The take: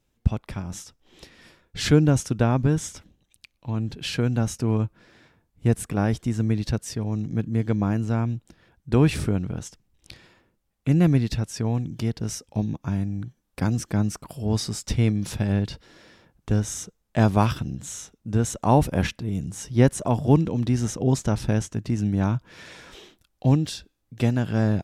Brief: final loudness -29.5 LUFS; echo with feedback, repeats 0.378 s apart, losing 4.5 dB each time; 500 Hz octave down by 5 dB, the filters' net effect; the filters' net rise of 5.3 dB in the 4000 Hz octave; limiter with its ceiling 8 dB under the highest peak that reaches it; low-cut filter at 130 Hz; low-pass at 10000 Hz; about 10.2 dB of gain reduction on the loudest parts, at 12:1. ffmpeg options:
-af "highpass=130,lowpass=10k,equalizer=f=500:t=o:g=-6.5,equalizer=f=4k:t=o:g=7,acompressor=threshold=-25dB:ratio=12,alimiter=limit=-22dB:level=0:latency=1,aecho=1:1:378|756|1134|1512|1890|2268|2646|3024|3402:0.596|0.357|0.214|0.129|0.0772|0.0463|0.0278|0.0167|0.01,volume=2.5dB"

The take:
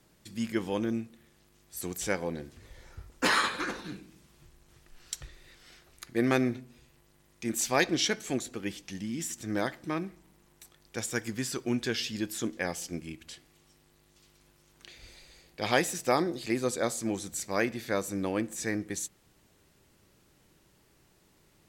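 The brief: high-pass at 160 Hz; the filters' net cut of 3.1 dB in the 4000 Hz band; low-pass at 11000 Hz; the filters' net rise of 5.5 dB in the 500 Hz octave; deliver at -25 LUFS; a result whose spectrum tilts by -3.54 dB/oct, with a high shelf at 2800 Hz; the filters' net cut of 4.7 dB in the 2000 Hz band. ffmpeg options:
-af "highpass=160,lowpass=11k,equalizer=f=500:t=o:g=7,equalizer=f=2k:t=o:g=-7,highshelf=f=2.8k:g=5.5,equalizer=f=4k:t=o:g=-7,volume=4.5dB"

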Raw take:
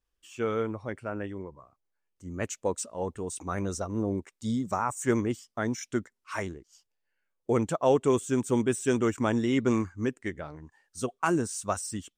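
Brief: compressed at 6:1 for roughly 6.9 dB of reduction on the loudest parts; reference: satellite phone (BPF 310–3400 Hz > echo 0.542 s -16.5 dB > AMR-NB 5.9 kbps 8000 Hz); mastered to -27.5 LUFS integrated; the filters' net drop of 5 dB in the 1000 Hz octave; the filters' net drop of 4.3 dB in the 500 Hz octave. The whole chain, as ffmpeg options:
-af "equalizer=f=500:t=o:g=-3,equalizer=f=1k:t=o:g=-5.5,acompressor=threshold=-29dB:ratio=6,highpass=310,lowpass=3.4k,aecho=1:1:542:0.15,volume=13dB" -ar 8000 -c:a libopencore_amrnb -b:a 5900

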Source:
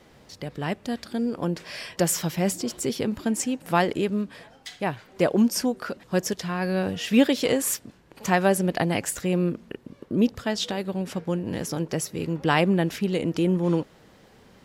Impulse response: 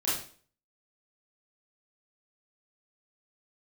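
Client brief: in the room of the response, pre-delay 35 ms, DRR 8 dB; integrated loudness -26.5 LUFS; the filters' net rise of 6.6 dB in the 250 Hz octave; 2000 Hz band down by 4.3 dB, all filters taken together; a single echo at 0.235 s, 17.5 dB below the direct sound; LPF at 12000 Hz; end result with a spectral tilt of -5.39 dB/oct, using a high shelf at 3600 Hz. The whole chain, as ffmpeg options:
-filter_complex "[0:a]lowpass=12k,equalizer=f=250:t=o:g=8.5,equalizer=f=2k:t=o:g=-7.5,highshelf=f=3.6k:g=6.5,aecho=1:1:235:0.133,asplit=2[a][b];[1:a]atrim=start_sample=2205,adelay=35[c];[b][c]afir=irnorm=-1:irlink=0,volume=-16dB[d];[a][d]amix=inputs=2:normalize=0,volume=-6.5dB"

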